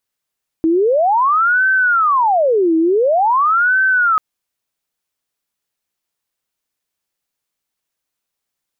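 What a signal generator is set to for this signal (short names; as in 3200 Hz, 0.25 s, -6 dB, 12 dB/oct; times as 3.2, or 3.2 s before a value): siren wail 322–1540 Hz 0.47/s sine -10.5 dBFS 3.54 s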